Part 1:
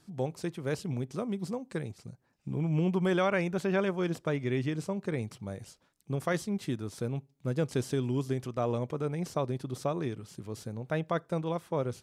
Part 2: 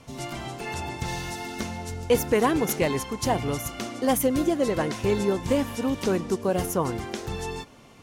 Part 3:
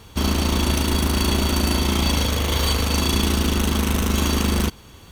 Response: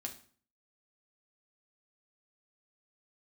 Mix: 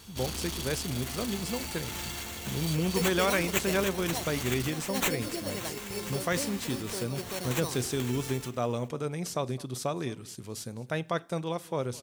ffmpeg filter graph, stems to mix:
-filter_complex "[0:a]volume=-2.5dB,asplit=4[link_01][link_02][link_03][link_04];[link_02]volume=-10dB[link_05];[link_03]volume=-20.5dB[link_06];[1:a]highshelf=frequency=5500:gain=11.5,acrusher=samples=9:mix=1:aa=0.000001,adelay=650,volume=0dB,asplit=2[link_07][link_08];[link_08]volume=-15dB[link_09];[2:a]asoftclip=type=hard:threshold=-22.5dB,volume=-11dB[link_10];[link_04]apad=whole_len=382384[link_11];[link_07][link_11]sidechaincompress=threshold=-43dB:ratio=8:attack=16:release=925[link_12];[link_12][link_10]amix=inputs=2:normalize=0,alimiter=level_in=13dB:limit=-24dB:level=0:latency=1:release=32,volume=-13dB,volume=0dB[link_13];[3:a]atrim=start_sample=2205[link_14];[link_05][link_14]afir=irnorm=-1:irlink=0[link_15];[link_06][link_09]amix=inputs=2:normalize=0,aecho=0:1:212:1[link_16];[link_01][link_13][link_15][link_16]amix=inputs=4:normalize=0,highshelf=frequency=2600:gain=11.5"

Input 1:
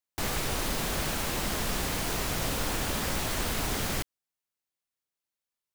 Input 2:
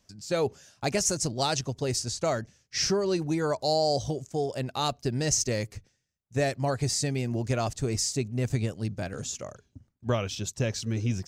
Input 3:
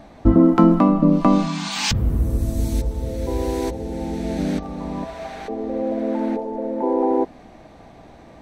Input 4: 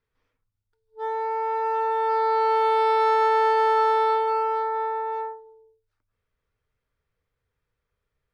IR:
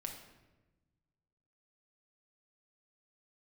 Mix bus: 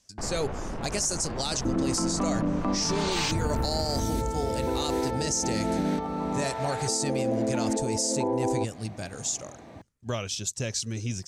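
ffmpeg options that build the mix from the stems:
-filter_complex "[0:a]lowpass=1100,asoftclip=type=tanh:threshold=-31.5dB,volume=2.5dB[link_01];[1:a]lowpass=frequency=10000:width=0.5412,lowpass=frequency=10000:width=1.3066,aemphasis=mode=production:type=75fm,volume=-3dB[link_02];[2:a]highpass=80,acompressor=threshold=-20dB:ratio=6,adelay=1400,volume=-2dB[link_03];[3:a]alimiter=limit=-22dB:level=0:latency=1,adelay=1800,volume=-6.5dB[link_04];[link_01][link_02][link_03][link_04]amix=inputs=4:normalize=0,alimiter=limit=-18dB:level=0:latency=1:release=29"

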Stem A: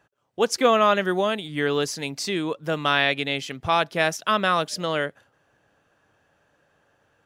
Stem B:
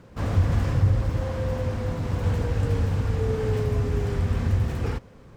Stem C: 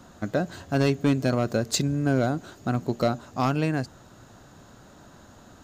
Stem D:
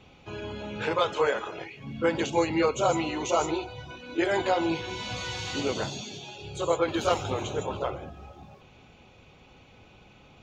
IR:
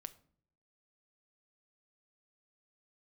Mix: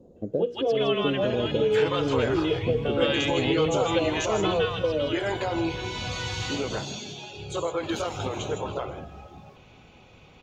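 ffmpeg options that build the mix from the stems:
-filter_complex "[0:a]lowpass=frequency=3100:width_type=q:width=5.4,bandreject=frequency=60:width_type=h:width=6,bandreject=frequency=120:width_type=h:width=6,bandreject=frequency=180:width_type=h:width=6,bandreject=frequency=240:width_type=h:width=6,bandreject=frequency=300:width_type=h:width=6,bandreject=frequency=360:width_type=h:width=6,bandreject=frequency=420:width_type=h:width=6,bandreject=frequency=480:width_type=h:width=6,asplit=2[link_01][link_02];[link_02]adelay=2.2,afreqshift=1.1[link_03];[link_01][link_03]amix=inputs=2:normalize=1,volume=0.5dB,asplit=3[link_04][link_05][link_06];[link_05]volume=-21.5dB[link_07];[link_06]volume=-12dB[link_08];[1:a]equalizer=frequency=120:width=6.8:gain=12.5,adelay=1800,volume=-17.5dB[link_09];[2:a]volume=-6dB,asplit=2[link_10][link_11];[link_11]volume=-14dB[link_12];[3:a]alimiter=limit=-21dB:level=0:latency=1:release=124,adelay=950,volume=-1dB,asplit=3[link_13][link_14][link_15];[link_14]volume=-3dB[link_16];[link_15]volume=-15.5dB[link_17];[link_04][link_10]amix=inputs=2:normalize=0,lowpass=frequency=470:width_type=q:width=5.2,acompressor=threshold=-22dB:ratio=6,volume=0dB[link_18];[4:a]atrim=start_sample=2205[link_19];[link_07][link_12][link_16]amix=inputs=3:normalize=0[link_20];[link_20][link_19]afir=irnorm=-1:irlink=0[link_21];[link_08][link_17]amix=inputs=2:normalize=0,aecho=0:1:162|324|486|648|810:1|0.35|0.122|0.0429|0.015[link_22];[link_09][link_13][link_18][link_21][link_22]amix=inputs=5:normalize=0"

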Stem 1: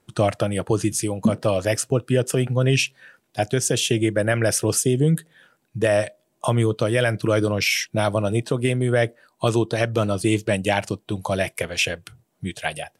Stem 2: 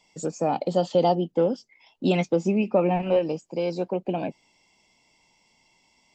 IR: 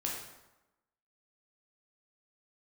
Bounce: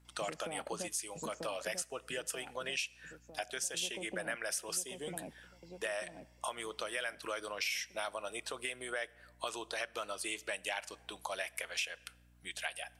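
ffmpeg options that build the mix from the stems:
-filter_complex "[0:a]highpass=940,aeval=exprs='val(0)+0.00112*(sin(2*PI*60*n/s)+sin(2*PI*2*60*n/s)/2+sin(2*PI*3*60*n/s)/3+sin(2*PI*4*60*n/s)/4+sin(2*PI*5*60*n/s)/5)':channel_layout=same,volume=-5dB,asplit=2[link_01][link_02];[link_02]volume=-24dB[link_03];[1:a]acompressor=threshold=-31dB:ratio=6,adelay=50,volume=-6dB,asplit=3[link_04][link_05][link_06];[link_04]atrim=end=0.88,asetpts=PTS-STARTPTS,afade=type=out:start_time=0.876:duration=0.004:curve=hsin[link_07];[link_05]atrim=start=0.88:end=3.74,asetpts=PTS-STARTPTS,volume=0[link_08];[link_06]atrim=start=3.74,asetpts=PTS-STARTPTS,afade=type=in:duration=0.004:curve=hsin[link_09];[link_07][link_08][link_09]concat=n=3:v=0:a=1,asplit=2[link_10][link_11];[link_11]volume=-3.5dB[link_12];[2:a]atrim=start_sample=2205[link_13];[link_03][link_13]afir=irnorm=-1:irlink=0[link_14];[link_12]aecho=0:1:943|1886|2829|3772|4715|5658|6601:1|0.5|0.25|0.125|0.0625|0.0312|0.0156[link_15];[link_01][link_10][link_14][link_15]amix=inputs=4:normalize=0,acompressor=threshold=-37dB:ratio=3"

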